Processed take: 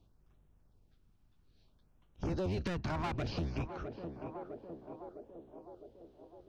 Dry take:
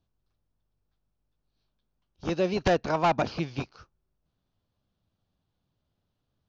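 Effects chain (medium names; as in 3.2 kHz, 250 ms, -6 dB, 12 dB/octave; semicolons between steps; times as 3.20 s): octave divider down 1 oct, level +2 dB; peak limiter -23 dBFS, peak gain reduction 9.5 dB; overload inside the chain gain 28.5 dB; LFO notch sine 0.6 Hz 470–4900 Hz; on a send: band-passed feedback delay 657 ms, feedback 68%, band-pass 480 Hz, level -12 dB; on the sum: compression 2.5:1, threshold -46 dBFS, peak gain reduction 10.5 dB; treble shelf 6.1 kHz -7.5 dB; trim +8 dB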